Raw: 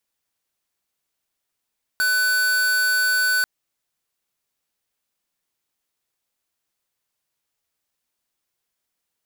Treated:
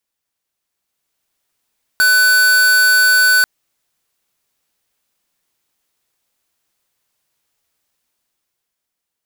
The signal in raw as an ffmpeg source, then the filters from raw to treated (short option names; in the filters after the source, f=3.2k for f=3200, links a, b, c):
-f lavfi -i "aevalsrc='0.106*(2*lt(mod(1500*t,1),0.5)-1)':d=1.44:s=44100"
-af "dynaudnorm=f=100:g=21:m=8.5dB"